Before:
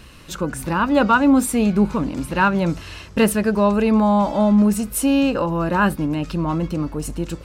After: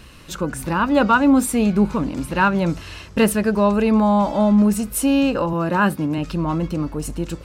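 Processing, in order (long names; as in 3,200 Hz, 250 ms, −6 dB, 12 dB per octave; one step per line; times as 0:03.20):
0:05.53–0:06.18: high-pass filter 89 Hz 24 dB per octave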